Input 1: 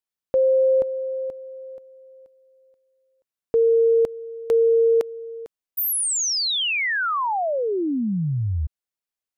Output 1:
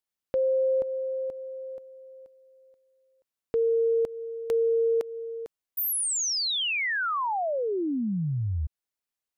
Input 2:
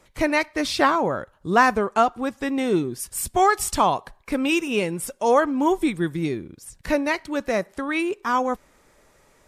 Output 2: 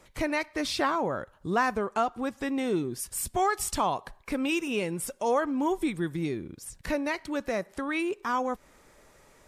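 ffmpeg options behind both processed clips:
-af "acompressor=threshold=-34dB:ratio=1.5:attack=1.2:release=238:detection=peak"

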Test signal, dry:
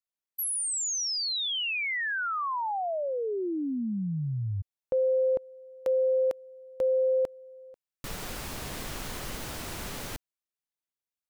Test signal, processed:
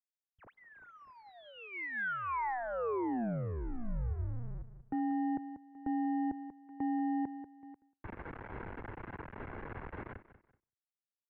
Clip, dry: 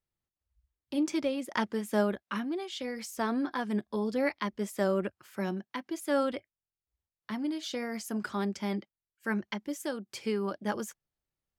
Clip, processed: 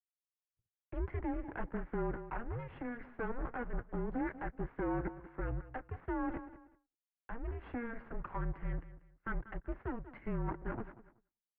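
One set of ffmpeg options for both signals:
-filter_complex "[0:a]lowshelf=f=180:g=8,aecho=1:1:1.7:0.35,asplit=2[a][b];[b]aecho=0:1:189|378|567:0.158|0.046|0.0133[c];[a][c]amix=inputs=2:normalize=0,aeval=exprs='max(val(0),0)':c=same,alimiter=level_in=0.5dB:limit=-24dB:level=0:latency=1:release=25,volume=-0.5dB,agate=range=-33dB:threshold=-55dB:ratio=3:release=341:detection=peak,highpass=f=150:t=q:w=0.5412,highpass=f=150:t=q:w=1.307,lowpass=f=2.2k:t=q:w=0.5176,lowpass=f=2.2k:t=q:w=0.7071,lowpass=f=2.2k:t=q:w=1.932,afreqshift=-240"

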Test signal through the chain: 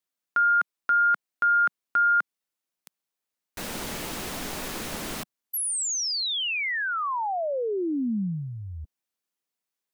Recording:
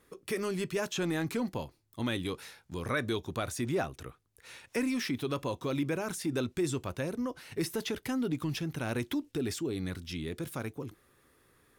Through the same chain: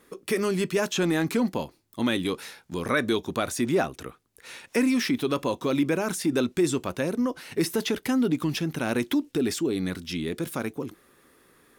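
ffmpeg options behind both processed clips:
-af "lowshelf=f=150:t=q:w=1.5:g=-6.5,volume=7dB"

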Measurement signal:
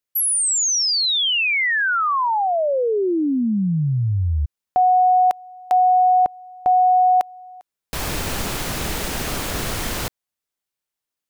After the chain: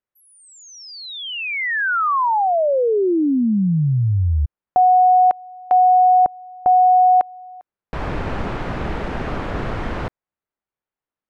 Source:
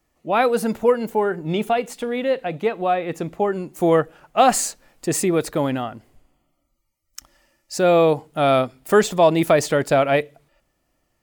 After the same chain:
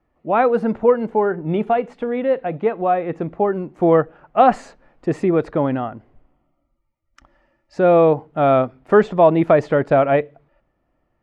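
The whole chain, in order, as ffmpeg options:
-af "lowpass=1.6k,volume=2.5dB"

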